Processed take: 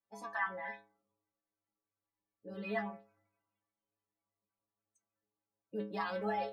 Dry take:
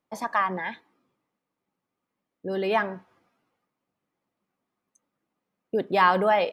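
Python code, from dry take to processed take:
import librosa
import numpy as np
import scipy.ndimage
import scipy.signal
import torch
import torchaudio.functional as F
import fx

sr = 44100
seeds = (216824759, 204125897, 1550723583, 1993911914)

y = fx.spec_quant(x, sr, step_db=30)
y = fx.stiff_resonator(y, sr, f0_hz=100.0, decay_s=0.49, stiffness=0.008)
y = fx.dynamic_eq(y, sr, hz=1800.0, q=1.9, threshold_db=-55.0, ratio=4.0, max_db=4)
y = y * librosa.db_to_amplitude(-1.5)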